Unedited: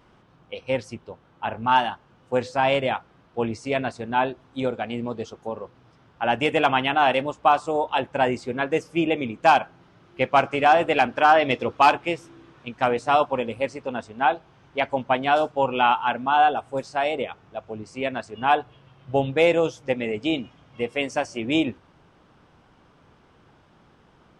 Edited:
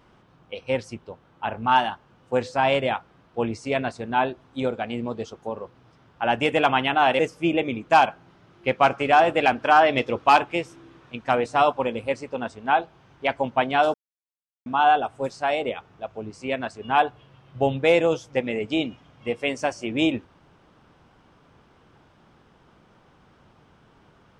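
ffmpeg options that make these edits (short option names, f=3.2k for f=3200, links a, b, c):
-filter_complex "[0:a]asplit=4[a][b][c][d];[a]atrim=end=7.192[e];[b]atrim=start=8.718:end=15.47,asetpts=PTS-STARTPTS,afade=t=out:st=6.748:d=0.004:c=hsin[f];[c]atrim=start=15.47:end=16.19,asetpts=PTS-STARTPTS,volume=0[g];[d]atrim=start=16.19,asetpts=PTS-STARTPTS,afade=t=in:d=0.004:c=hsin[h];[f][g][h]concat=n=3:v=0:a=1[i];[e][i]acrossfade=d=0.004:c1=hsin:c2=hsin"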